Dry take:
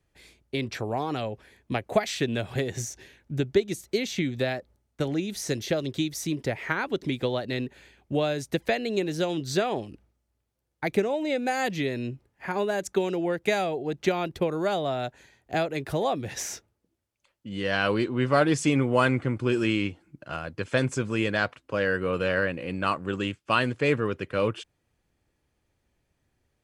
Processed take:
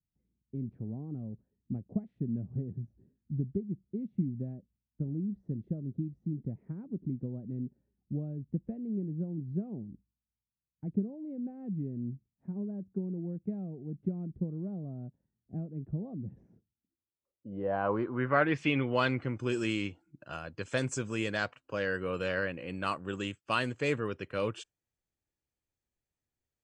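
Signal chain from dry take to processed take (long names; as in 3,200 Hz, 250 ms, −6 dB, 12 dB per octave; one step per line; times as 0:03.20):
noise reduction from a noise print of the clip's start 12 dB
low-pass filter sweep 200 Hz → 7,600 Hz, 0:16.67–0:19.47
level −7 dB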